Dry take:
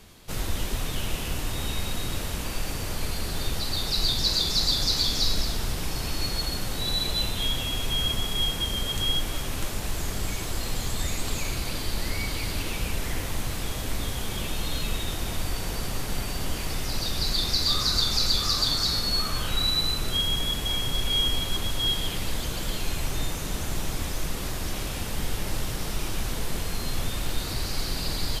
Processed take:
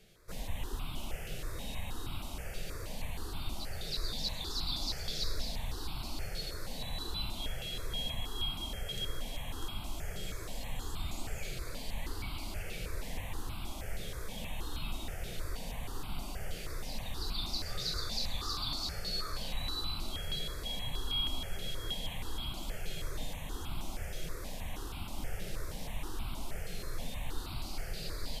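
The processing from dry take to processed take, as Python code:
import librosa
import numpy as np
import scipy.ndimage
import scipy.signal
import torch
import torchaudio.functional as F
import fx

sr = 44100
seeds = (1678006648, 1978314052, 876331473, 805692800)

p1 = fx.bass_treble(x, sr, bass_db=-1, treble_db=-6)
p2 = p1 + fx.echo_thinned(p1, sr, ms=583, feedback_pct=65, hz=420.0, wet_db=-12.5, dry=0)
p3 = fx.phaser_held(p2, sr, hz=6.3, low_hz=270.0, high_hz=1800.0)
y = p3 * librosa.db_to_amplitude(-7.0)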